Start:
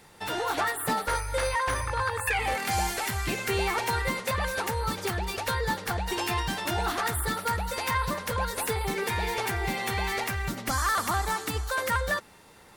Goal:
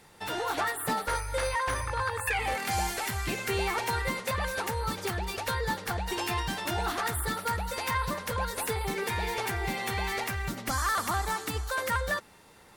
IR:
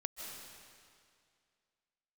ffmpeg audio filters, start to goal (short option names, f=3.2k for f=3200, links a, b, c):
-filter_complex "[1:a]atrim=start_sample=2205,atrim=end_sample=4410,asetrate=37044,aresample=44100[a];[0:a][a]afir=irnorm=-1:irlink=0"